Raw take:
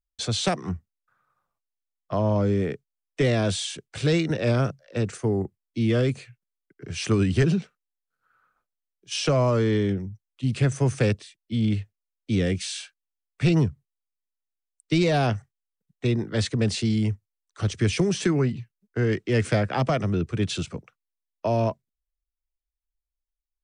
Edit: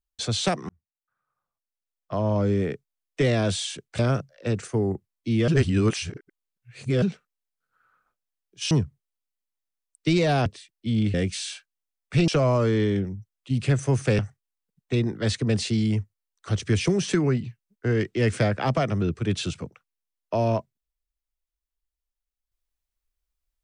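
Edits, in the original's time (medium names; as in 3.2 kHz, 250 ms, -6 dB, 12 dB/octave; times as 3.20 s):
0.69–2.52 s: fade in
3.99–4.49 s: delete
5.98–7.52 s: reverse
9.21–11.12 s: swap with 13.56–15.31 s
11.80–12.42 s: delete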